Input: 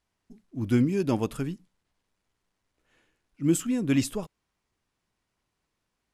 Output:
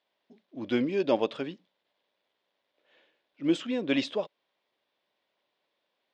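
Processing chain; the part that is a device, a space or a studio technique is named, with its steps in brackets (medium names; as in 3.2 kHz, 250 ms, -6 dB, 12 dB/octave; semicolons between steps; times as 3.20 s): phone earpiece (cabinet simulation 380–4400 Hz, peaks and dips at 570 Hz +9 dB, 1.3 kHz -5 dB, 3.5 kHz +7 dB); trim +2.5 dB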